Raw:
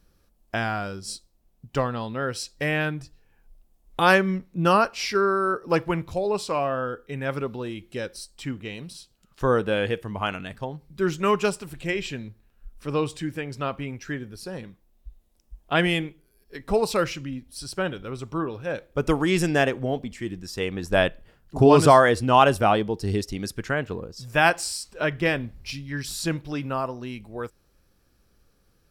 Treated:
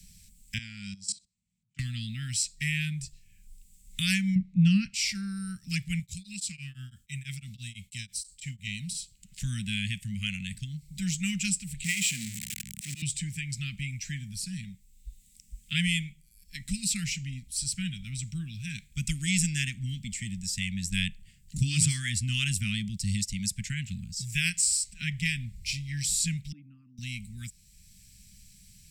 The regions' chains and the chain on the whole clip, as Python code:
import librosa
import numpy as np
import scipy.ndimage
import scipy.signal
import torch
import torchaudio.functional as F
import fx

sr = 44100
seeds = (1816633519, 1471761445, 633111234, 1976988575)

y = fx.chain(x, sr, fx.auto_swell(attack_ms=534.0),
    fx.bandpass_edges(low_hz=150.0, high_hz=7200.0),
    fx.level_steps(step_db=18), at=(0.58, 1.79))
y = fx.chain(y, sr, fx.lowpass(hz=2800.0, slope=12),
    fx.peak_eq(hz=200.0, db=11.0, octaves=2.9), at=(4.35, 4.94))
y = fx.chain(y, sr, fx.highpass(hz=46.0, slope=12),
    fx.peak_eq(hz=540.0, db=-13.5, octaves=2.7),
    fx.tremolo_abs(hz=6.0), at=(5.99, 8.67))
y = fx.chain(y, sr, fx.zero_step(step_db=-26.5),
    fx.highpass(hz=220.0, slope=12),
    fx.auto_swell(attack_ms=156.0), at=(11.84, 13.02))
y = fx.chain(y, sr, fx.envelope_sharpen(power=1.5),
    fx.double_bandpass(hz=490.0, octaves=1.4), at=(26.52, 26.98))
y = scipy.signal.sosfilt(scipy.signal.cheby1(4, 1.0, [200.0, 2100.0], 'bandstop', fs=sr, output='sos'), y)
y = fx.peak_eq(y, sr, hz=7800.0, db=15.0, octaves=0.44)
y = fx.band_squash(y, sr, depth_pct=40)